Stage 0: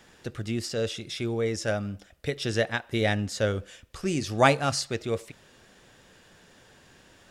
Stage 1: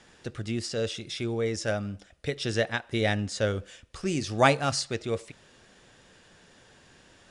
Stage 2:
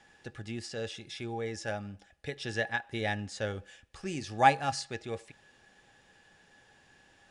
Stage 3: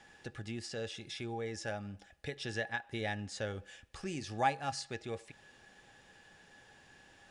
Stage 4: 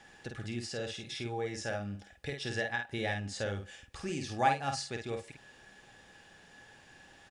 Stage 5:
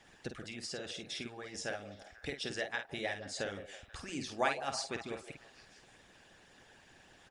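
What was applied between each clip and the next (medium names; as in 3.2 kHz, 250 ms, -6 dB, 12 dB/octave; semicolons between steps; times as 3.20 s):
elliptic low-pass 10 kHz, stop band 40 dB
peaking EQ 2.5 kHz +3 dB 0.69 oct; small resonant body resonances 810/1700 Hz, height 16 dB, ringing for 95 ms; trim -8 dB
compression 1.5:1, threshold -46 dBFS, peak gain reduction 11 dB; trim +1.5 dB
doubling 50 ms -5 dB; trim +2 dB
harmonic-percussive split harmonic -18 dB; repeats whose band climbs or falls 162 ms, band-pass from 530 Hz, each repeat 0.7 oct, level -10 dB; trim +2.5 dB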